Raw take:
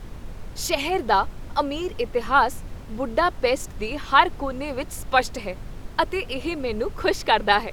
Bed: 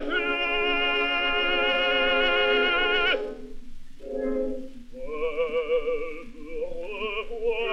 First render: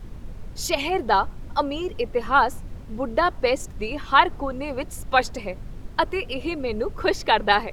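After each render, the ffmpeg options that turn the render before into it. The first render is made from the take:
-af "afftdn=nr=6:nf=-39"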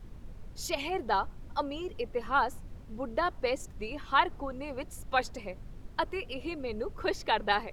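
-af "volume=-9dB"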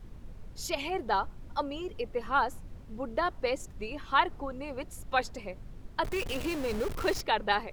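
-filter_complex "[0:a]asettb=1/sr,asplit=3[a][b][c];[a]atrim=end=6.044[d];[b]atrim=start=6.04:end=7.21,asetpts=PTS-STARTPTS,afade=t=in:d=0.004:c=qsin,afade=t=out:st=1.166:d=0.004:c=qsin,aeval=exprs='val(0)+0.5*0.0224*sgn(val(0))':c=same[e];[c]atrim=start=7.206[f];[d][e]acrossfade=d=0.004:c1=hsin:c2=qsin[g];[g][f]acrossfade=d=0.004:c1=qsin:c2=hsin"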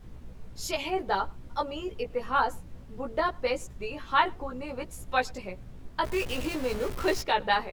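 -filter_complex "[0:a]asplit=2[a][b];[b]adelay=16,volume=-2.5dB[c];[a][c]amix=inputs=2:normalize=0,asplit=2[d][e];[e]adelay=105,volume=-28dB,highshelf=f=4k:g=-2.36[f];[d][f]amix=inputs=2:normalize=0"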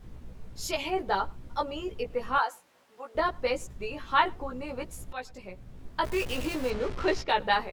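-filter_complex "[0:a]asettb=1/sr,asplit=3[a][b][c];[a]atrim=end=2.384[d];[b]atrim=start=2.38:end=3.15,asetpts=PTS-STARTPTS,afade=t=in:d=0.004:c=qsin,afade=t=out:st=0.766:d=0.004:c=qsin,highpass=740[e];[c]atrim=start=3.146[f];[d][e]acrossfade=d=0.004:c1=hsin:c2=qsin[g];[g][f]acrossfade=d=0.004:c1=qsin:c2=hsin,asettb=1/sr,asplit=3[h][i][j];[h]atrim=end=6.704[k];[i]atrim=start=6.7:end=7.29,asetpts=PTS-STARTPTS,afade=t=in:d=0.004:c=qsin,afade=t=out:st=0.586:d=0.004:c=qsin,lowpass=4.9k[l];[j]atrim=start=7.286[m];[k][l]acrossfade=d=0.004:c1=hsin:c2=qsin[n];[n][m]acrossfade=d=0.004:c1=qsin:c2=hsin,asplit=2[o][p];[o]atrim=end=5.13,asetpts=PTS-STARTPTS,afade=t=out:st=5.126:d=0.004:c=hsin:silence=0.199526[q];[p]atrim=start=5.13,asetpts=PTS-STARTPTS,afade=t=in:d=0.76:silence=0.199526[r];[q][r]concat=n=2:v=0:a=1"

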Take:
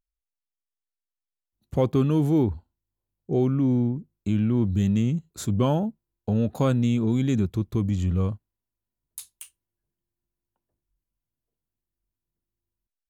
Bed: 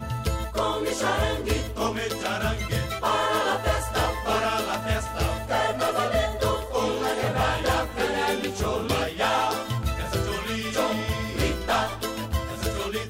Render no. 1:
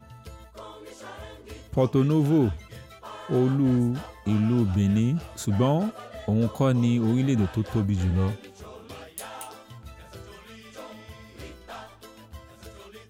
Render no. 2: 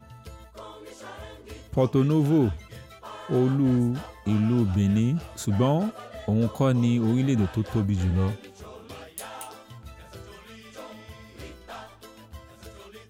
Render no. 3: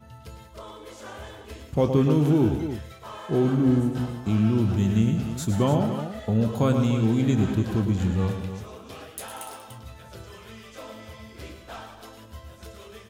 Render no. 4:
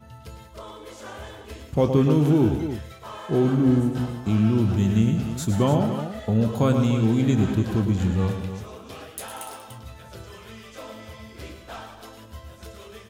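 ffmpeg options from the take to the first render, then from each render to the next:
-filter_complex "[1:a]volume=-17dB[a];[0:a][a]amix=inputs=2:normalize=0"
-af anull
-filter_complex "[0:a]asplit=2[a][b];[b]adelay=27,volume=-13dB[c];[a][c]amix=inputs=2:normalize=0,asplit=2[d][e];[e]aecho=0:1:104|119|187|293:0.282|0.282|0.2|0.299[f];[d][f]amix=inputs=2:normalize=0"
-af "volume=1.5dB"

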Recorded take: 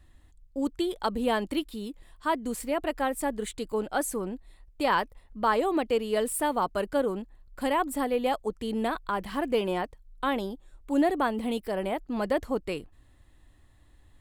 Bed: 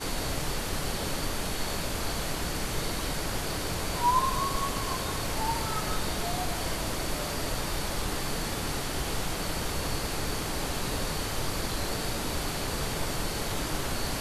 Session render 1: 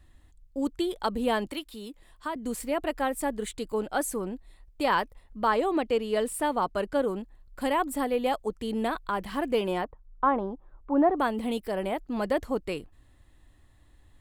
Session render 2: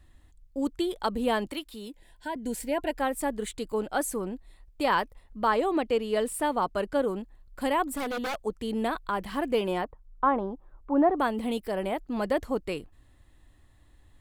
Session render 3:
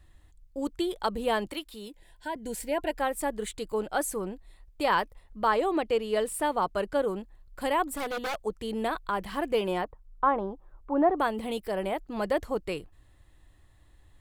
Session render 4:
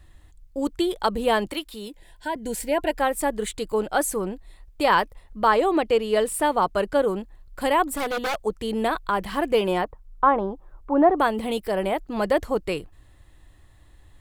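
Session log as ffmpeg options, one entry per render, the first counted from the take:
-filter_complex "[0:a]asettb=1/sr,asplit=3[a][b][c];[a]atrim=end=1.464[d];[b]atrim=start=1.46:end=2.36,asetpts=PTS-STARTPTS,afade=t=in:d=0.004:c=qsin,afade=t=out:st=0.896:d=0.004:c=qsin,acrossover=split=210|490[e][f][g];[e]acompressor=threshold=-52dB:ratio=4[h];[f]acompressor=threshold=-42dB:ratio=4[i];[g]acompressor=threshold=-32dB:ratio=4[j];[h][i][j]amix=inputs=3:normalize=0[k];[c]atrim=start=2.356[l];[d][k]acrossfade=d=0.004:c1=hsin:c2=qsin[m];[m][l]acrossfade=d=0.004:c1=qsin:c2=hsin,asettb=1/sr,asplit=3[n][o][p];[n]atrim=end=5.474[q];[o]atrim=start=5.47:end=7.02,asetpts=PTS-STARTPTS,afade=t=in:d=0.004:c=qsin,afade=t=out:st=1.546:d=0.004:c=qsin,highshelf=f=11k:g=-10[r];[p]atrim=start=7.016[s];[q][r]acrossfade=d=0.004:c1=hsin:c2=qsin[t];[t][s]acrossfade=d=0.004:c1=qsin:c2=hsin,asettb=1/sr,asplit=3[u][v][w];[u]atrim=end=9.844[x];[v]atrim=start=9.84:end=11.18,asetpts=PTS-STARTPTS,afade=t=in:d=0.004:c=qsin,afade=t=out:st=1.336:d=0.004:c=qsin,lowpass=f=1.1k:t=q:w=2.3[y];[w]atrim=start=11.176[z];[x][y]acrossfade=d=0.004:c1=hsin:c2=qsin[aa];[aa][z]acrossfade=d=0.004:c1=qsin:c2=hsin"
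-filter_complex "[0:a]asettb=1/sr,asplit=3[a][b][c];[a]atrim=end=1.874[d];[b]atrim=start=1.87:end=2.99,asetpts=PTS-STARTPTS,afade=t=in:d=0.004:c=qsin,afade=t=out:st=1.116:d=0.004:c=qsin,asuperstop=centerf=1200:order=20:qfactor=3.6[e];[c]atrim=start=2.986[f];[d][e]acrossfade=d=0.004:c1=hsin:c2=qsin[g];[g][f]acrossfade=d=0.004:c1=qsin:c2=hsin,asettb=1/sr,asplit=3[h][i][j];[h]atrim=end=7.914[k];[i]atrim=start=7.91:end=8.42,asetpts=PTS-STARTPTS,afade=t=in:d=0.004:c=qsin,afade=t=out:st=0.506:d=0.004:c=qsin,aeval=exprs='0.0501*(abs(mod(val(0)/0.0501+3,4)-2)-1)':c=same[l];[j]atrim=start=8.416[m];[k][l]acrossfade=d=0.004:c1=hsin:c2=qsin[n];[n][m]acrossfade=d=0.004:c1=qsin:c2=hsin"
-af "equalizer=f=250:t=o:w=0.3:g=-8"
-af "volume=6dB"

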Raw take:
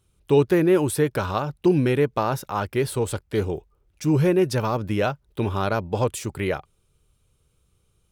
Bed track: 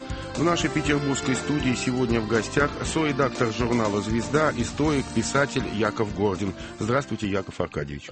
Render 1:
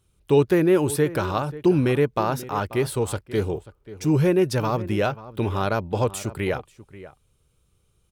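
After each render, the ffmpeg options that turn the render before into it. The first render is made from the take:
-filter_complex "[0:a]asplit=2[a][b];[b]adelay=536.4,volume=-16dB,highshelf=f=4k:g=-12.1[c];[a][c]amix=inputs=2:normalize=0"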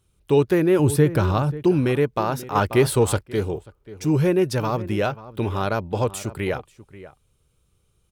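-filter_complex "[0:a]asettb=1/sr,asplit=3[a][b][c];[a]atrim=end=0.794[d];[b]atrim=start=0.79:end=1.63,asetpts=PTS-STARTPTS,afade=t=in:d=0.004:c=qsin,afade=t=out:st=0.836:d=0.004:c=qsin,equalizer=f=94:w=0.43:g=9.5[e];[c]atrim=start=1.626[f];[d][e]acrossfade=d=0.004:c1=hsin:c2=qsin[g];[g][f]acrossfade=d=0.004:c1=qsin:c2=hsin,asettb=1/sr,asplit=3[h][i][j];[h]atrim=end=2.554[k];[i]atrim=start=2.55:end=3.23,asetpts=PTS-STARTPTS,afade=t=in:d=0.004:c=qsin,afade=t=out:st=0.676:d=0.004:c=qsin,acontrast=57[l];[j]atrim=start=3.226[m];[k][l]acrossfade=d=0.004:c1=hsin:c2=qsin[n];[n][m]acrossfade=d=0.004:c1=qsin:c2=hsin"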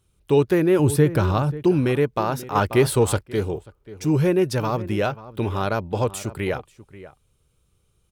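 -af anull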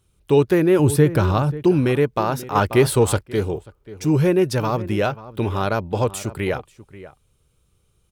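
-af "volume=2dB"

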